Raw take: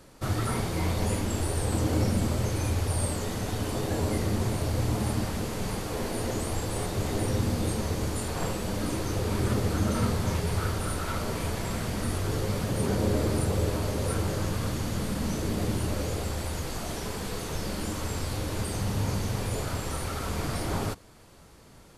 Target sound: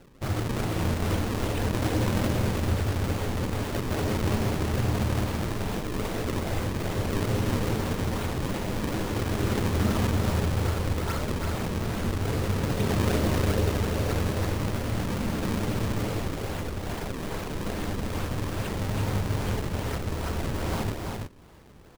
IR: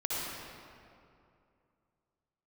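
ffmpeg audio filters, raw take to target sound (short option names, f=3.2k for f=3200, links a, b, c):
-filter_complex "[0:a]acrusher=samples=36:mix=1:aa=0.000001:lfo=1:lforange=57.6:lforate=2.4,asplit=2[a][b];[b]aecho=0:1:331:0.631[c];[a][c]amix=inputs=2:normalize=0"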